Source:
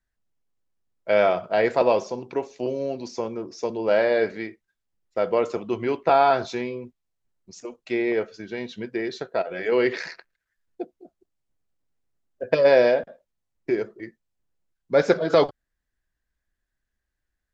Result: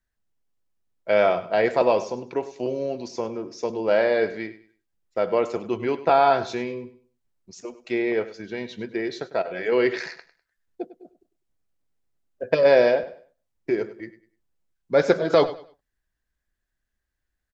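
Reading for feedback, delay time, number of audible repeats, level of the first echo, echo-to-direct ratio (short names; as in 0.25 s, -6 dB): 27%, 0.1 s, 2, -15.5 dB, -15.0 dB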